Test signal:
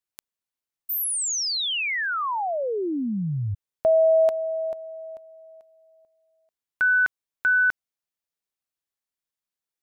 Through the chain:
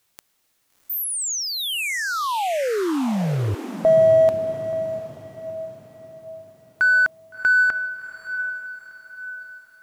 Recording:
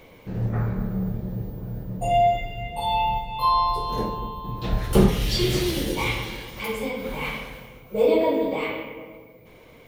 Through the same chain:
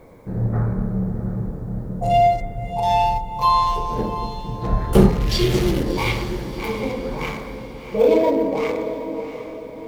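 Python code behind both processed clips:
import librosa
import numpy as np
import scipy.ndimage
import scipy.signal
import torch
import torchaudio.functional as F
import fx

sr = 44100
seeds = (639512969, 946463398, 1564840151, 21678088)

y = fx.wiener(x, sr, points=15)
y = fx.echo_diffused(y, sr, ms=696, feedback_pct=44, wet_db=-10.0)
y = fx.quant_dither(y, sr, seeds[0], bits=12, dither='triangular')
y = y * 10.0 ** (4.0 / 20.0)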